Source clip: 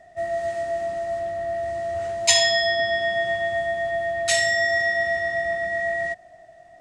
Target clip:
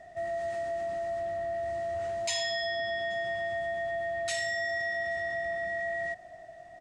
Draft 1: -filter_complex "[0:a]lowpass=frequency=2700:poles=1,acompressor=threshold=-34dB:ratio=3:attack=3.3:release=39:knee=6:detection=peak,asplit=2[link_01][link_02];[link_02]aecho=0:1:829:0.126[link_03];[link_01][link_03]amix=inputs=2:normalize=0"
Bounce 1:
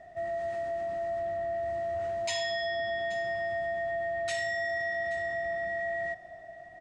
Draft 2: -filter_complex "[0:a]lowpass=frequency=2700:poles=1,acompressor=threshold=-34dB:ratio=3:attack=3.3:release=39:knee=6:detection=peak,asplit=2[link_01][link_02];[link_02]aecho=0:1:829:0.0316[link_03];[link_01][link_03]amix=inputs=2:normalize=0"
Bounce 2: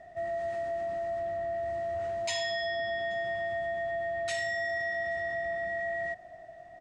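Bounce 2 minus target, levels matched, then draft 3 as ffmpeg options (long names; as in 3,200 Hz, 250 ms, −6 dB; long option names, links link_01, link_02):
8,000 Hz band −4.5 dB
-filter_complex "[0:a]lowpass=frequency=9100:poles=1,acompressor=threshold=-34dB:ratio=3:attack=3.3:release=39:knee=6:detection=peak,asplit=2[link_01][link_02];[link_02]aecho=0:1:829:0.0316[link_03];[link_01][link_03]amix=inputs=2:normalize=0"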